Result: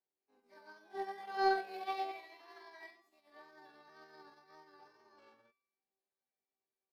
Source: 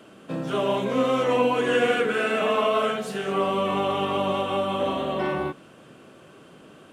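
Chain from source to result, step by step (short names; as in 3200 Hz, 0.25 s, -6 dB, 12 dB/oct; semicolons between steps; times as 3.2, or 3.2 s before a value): wow and flutter 44 cents; resonator 250 Hz, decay 0.88 s, mix 90%; pitch shift +7.5 st; in parallel at -11 dB: soft clip -32 dBFS, distortion -11 dB; on the sum: upward expander 2.5:1, over -50 dBFS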